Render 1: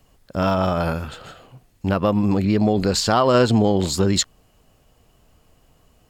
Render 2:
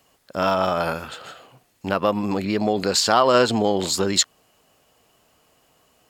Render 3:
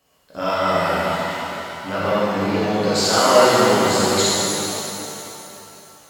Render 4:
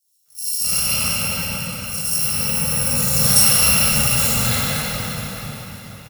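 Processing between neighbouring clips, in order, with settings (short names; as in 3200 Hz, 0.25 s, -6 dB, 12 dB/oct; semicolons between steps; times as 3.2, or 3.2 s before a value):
HPF 510 Hz 6 dB/oct; gain +2.5 dB
short-mantissa float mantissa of 6-bit; shimmer reverb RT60 3 s, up +7 st, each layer -8 dB, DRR -10 dB; gain -7.5 dB
FFT order left unsorted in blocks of 128 samples; bands offset in time highs, lows 0.26 s, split 4600 Hz; shoebox room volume 200 m³, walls hard, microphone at 0.84 m; gain -3 dB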